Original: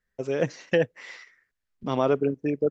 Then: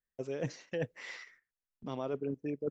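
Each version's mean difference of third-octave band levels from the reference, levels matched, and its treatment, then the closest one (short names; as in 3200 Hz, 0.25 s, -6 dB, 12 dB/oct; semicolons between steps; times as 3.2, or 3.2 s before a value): 3.0 dB: gate -59 dBFS, range -13 dB; dynamic EQ 1400 Hz, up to -3 dB, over -41 dBFS, Q 0.93; reverse; compressor, threshold -31 dBFS, peak gain reduction 13 dB; reverse; gain -2 dB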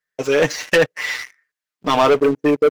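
7.5 dB: HPF 840 Hz 6 dB/oct; comb 6.6 ms, depth 73%; sample leveller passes 3; gain +6 dB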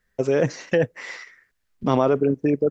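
2.0 dB: in parallel at +1.5 dB: negative-ratio compressor -27 dBFS, ratio -1; on the sum: dynamic EQ 3200 Hz, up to -5 dB, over -42 dBFS, Q 1.3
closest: third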